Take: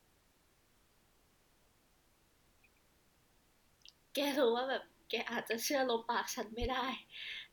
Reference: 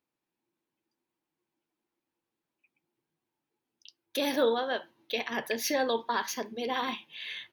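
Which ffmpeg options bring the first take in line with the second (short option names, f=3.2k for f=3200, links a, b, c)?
-filter_complex "[0:a]asplit=3[a][b][c];[a]afade=t=out:st=6.6:d=0.02[d];[b]highpass=f=140:w=0.5412,highpass=f=140:w=1.3066,afade=t=in:st=6.6:d=0.02,afade=t=out:st=6.72:d=0.02[e];[c]afade=t=in:st=6.72:d=0.02[f];[d][e][f]amix=inputs=3:normalize=0,agate=range=-21dB:threshold=-64dB,asetnsamples=n=441:p=0,asendcmd='3.63 volume volume 5.5dB',volume=0dB"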